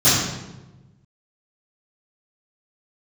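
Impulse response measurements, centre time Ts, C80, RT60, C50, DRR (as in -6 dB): 77 ms, 2.5 dB, 1.1 s, -0.5 dB, -18.5 dB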